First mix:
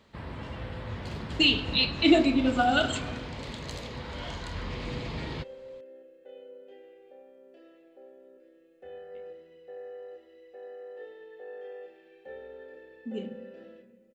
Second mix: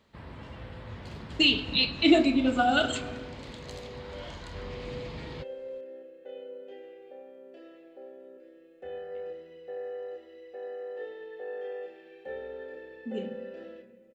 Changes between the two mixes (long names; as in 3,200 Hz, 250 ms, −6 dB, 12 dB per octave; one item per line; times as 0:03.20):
first sound −5.0 dB
second sound +5.0 dB